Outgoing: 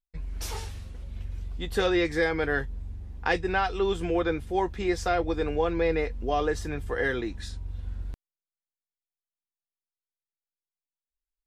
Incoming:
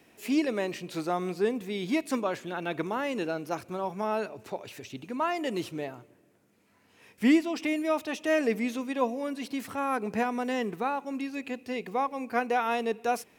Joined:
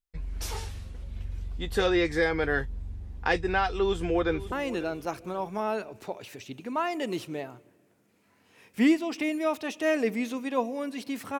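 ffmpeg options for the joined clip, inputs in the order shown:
-filter_complex "[0:a]apad=whole_dur=11.39,atrim=end=11.39,atrim=end=4.522[a];[1:a]atrim=start=2.958:end=9.83[b];[a][b]acrossfade=d=0.004:c1=hsin:c2=hsin,asplit=2[c][d];[d]afade=t=in:st=3.72:d=0.01,afade=t=out:st=4.52:d=0.01,aecho=0:1:540|1080|1620:0.16788|0.0503641|0.0151092[e];[c][e]amix=inputs=2:normalize=0"

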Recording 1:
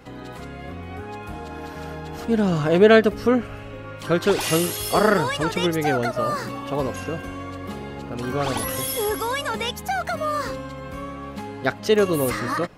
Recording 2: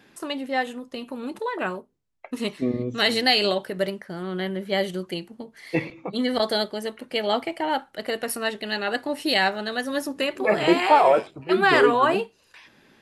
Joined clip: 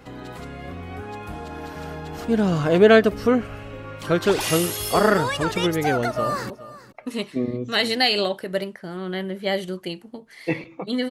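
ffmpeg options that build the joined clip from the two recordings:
-filter_complex "[0:a]apad=whole_dur=11.1,atrim=end=11.1,atrim=end=6.502[a];[1:a]atrim=start=1.758:end=6.36[b];[a][b]acrossfade=d=0.004:c1=hsin:c2=hsin,asplit=2[c][d];[d]afade=t=in:st=6.1:d=0.01,afade=t=out:st=6.5:d=0.01,aecho=0:1:420|840:0.141254|0.0211881[e];[c][e]amix=inputs=2:normalize=0"

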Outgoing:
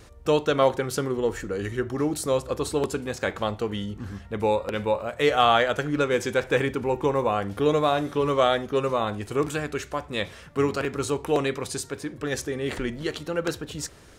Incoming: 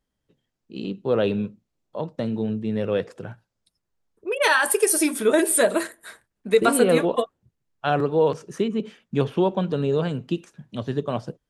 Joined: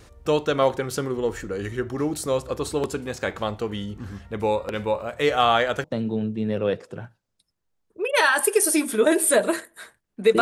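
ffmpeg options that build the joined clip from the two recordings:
-filter_complex "[0:a]apad=whole_dur=10.41,atrim=end=10.41,atrim=end=5.842[a];[1:a]atrim=start=2.108:end=6.68[b];[a][b]acrossfade=d=0.004:c1=hsin:c2=hsin"

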